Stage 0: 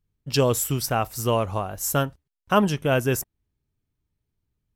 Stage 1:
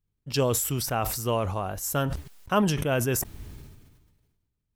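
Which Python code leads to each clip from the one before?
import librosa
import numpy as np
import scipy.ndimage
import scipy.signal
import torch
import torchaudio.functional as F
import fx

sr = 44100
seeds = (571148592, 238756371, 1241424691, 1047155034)

y = fx.sustainer(x, sr, db_per_s=39.0)
y = y * 10.0 ** (-4.5 / 20.0)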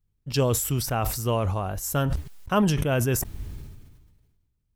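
y = fx.low_shelf(x, sr, hz=130.0, db=8.0)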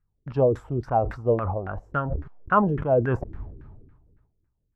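y = fx.filter_lfo_lowpass(x, sr, shape='saw_down', hz=3.6, low_hz=310.0, high_hz=1700.0, q=4.1)
y = fx.am_noise(y, sr, seeds[0], hz=5.7, depth_pct=60)
y = y * 10.0 ** (1.0 / 20.0)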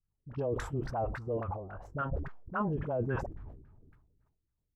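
y = fx.level_steps(x, sr, step_db=13)
y = fx.dispersion(y, sr, late='highs', ms=44.0, hz=650.0)
y = fx.sustainer(y, sr, db_per_s=70.0)
y = y * 10.0 ** (-5.5 / 20.0)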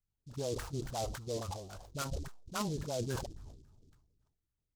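y = fx.noise_mod_delay(x, sr, seeds[1], noise_hz=5100.0, depth_ms=0.085)
y = y * 10.0 ** (-4.0 / 20.0)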